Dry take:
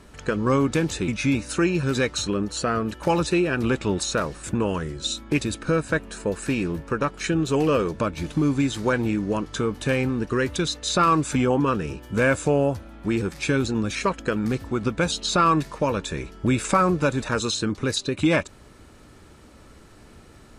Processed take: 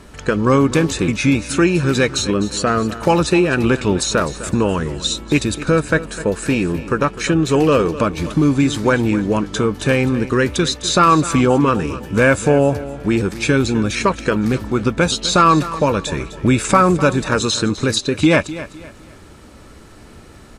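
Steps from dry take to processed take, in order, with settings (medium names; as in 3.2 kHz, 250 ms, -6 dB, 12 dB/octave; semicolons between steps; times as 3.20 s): feedback delay 254 ms, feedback 33%, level -15 dB; trim +7 dB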